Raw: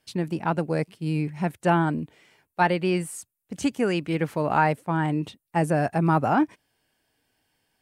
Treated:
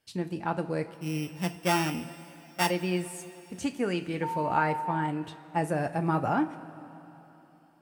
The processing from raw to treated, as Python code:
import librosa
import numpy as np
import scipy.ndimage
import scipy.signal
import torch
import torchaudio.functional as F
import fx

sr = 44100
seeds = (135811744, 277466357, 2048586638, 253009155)

y = fx.sample_sort(x, sr, block=16, at=(0.93, 2.67), fade=0.02)
y = fx.rev_double_slope(y, sr, seeds[0], early_s=0.23, late_s=3.6, knee_db=-18, drr_db=6.5)
y = fx.dmg_tone(y, sr, hz=910.0, level_db=-24.0, at=(4.22, 5.06), fade=0.02)
y = F.gain(torch.from_numpy(y), -6.0).numpy()